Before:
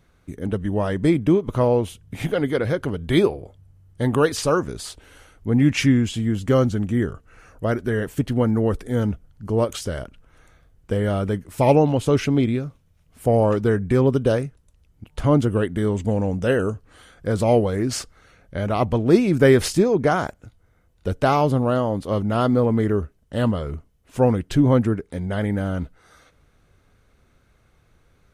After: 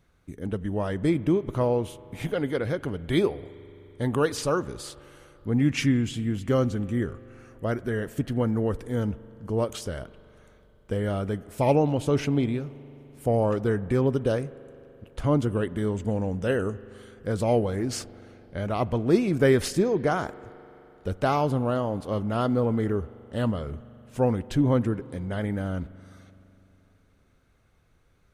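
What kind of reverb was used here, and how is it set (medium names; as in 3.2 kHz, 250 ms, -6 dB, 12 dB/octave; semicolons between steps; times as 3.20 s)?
spring tank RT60 3.5 s, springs 42 ms, chirp 45 ms, DRR 18 dB; trim -5.5 dB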